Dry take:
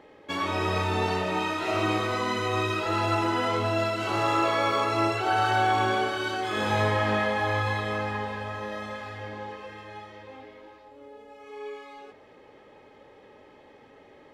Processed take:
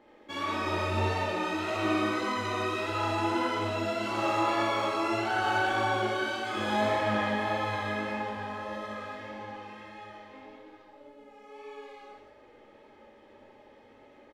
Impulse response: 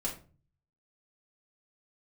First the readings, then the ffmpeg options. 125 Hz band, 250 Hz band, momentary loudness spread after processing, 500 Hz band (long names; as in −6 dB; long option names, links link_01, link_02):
−6.0 dB, −1.5 dB, 18 LU, −3.5 dB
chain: -filter_complex "[0:a]flanger=delay=17:depth=7:speed=1.7,aecho=1:1:61.22|180.8:0.891|0.631,asplit=2[link_01][link_02];[1:a]atrim=start_sample=2205,asetrate=48510,aresample=44100[link_03];[link_02][link_03]afir=irnorm=-1:irlink=0,volume=-6.5dB[link_04];[link_01][link_04]amix=inputs=2:normalize=0,volume=-6.5dB"